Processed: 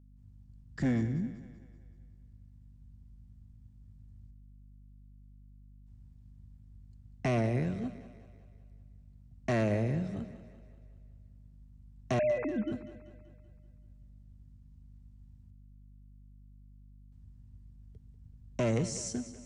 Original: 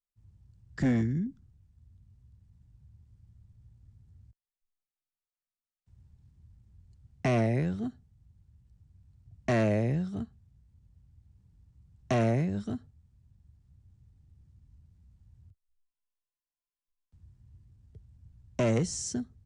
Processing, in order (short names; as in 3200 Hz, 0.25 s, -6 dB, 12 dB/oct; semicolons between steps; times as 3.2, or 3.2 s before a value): 12.19–12.72 sine-wave speech; hum 50 Hz, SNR 19 dB; split-band echo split 320 Hz, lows 0.12 s, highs 0.191 s, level -13.5 dB; gain -3 dB